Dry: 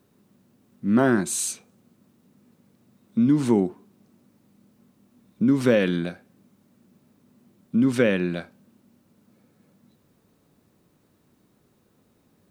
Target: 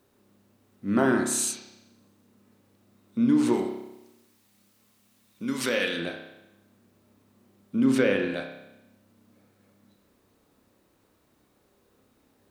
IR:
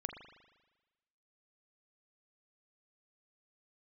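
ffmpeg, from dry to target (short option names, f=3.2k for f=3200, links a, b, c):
-filter_complex "[0:a]equalizer=f=160:w=1.3:g=-11,alimiter=limit=-11dB:level=0:latency=1:release=359,asplit=3[a][b][c];[a]afade=t=out:st=3.52:d=0.02[d];[b]tiltshelf=f=1.4k:g=-8,afade=t=in:st=3.52:d=0.02,afade=t=out:st=5.97:d=0.02[e];[c]afade=t=in:st=5.97:d=0.02[f];[d][e][f]amix=inputs=3:normalize=0[g];[1:a]atrim=start_sample=2205,asetrate=57330,aresample=44100[h];[g][h]afir=irnorm=-1:irlink=0,volume=4.5dB"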